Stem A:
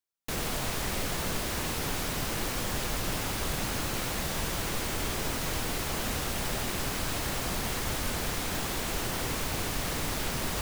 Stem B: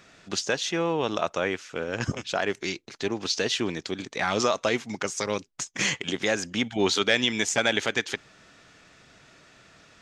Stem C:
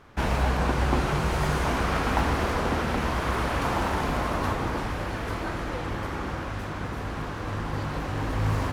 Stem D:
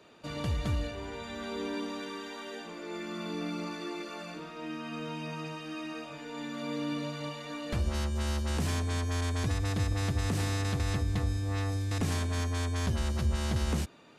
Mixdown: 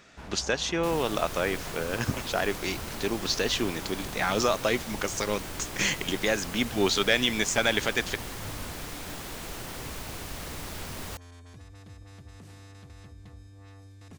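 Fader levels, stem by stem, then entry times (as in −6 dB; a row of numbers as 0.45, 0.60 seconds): −6.5, −1.0, −18.5, −18.0 decibels; 0.55, 0.00, 0.00, 2.10 seconds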